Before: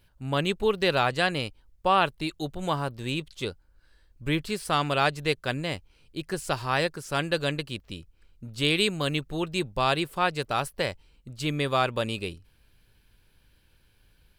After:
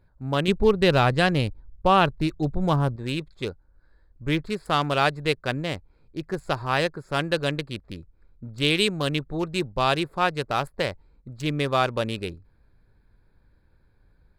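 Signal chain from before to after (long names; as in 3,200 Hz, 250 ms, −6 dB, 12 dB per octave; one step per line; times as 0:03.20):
adaptive Wiener filter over 15 samples
0:00.48–0:02.96: low-shelf EQ 240 Hz +11 dB
level +2.5 dB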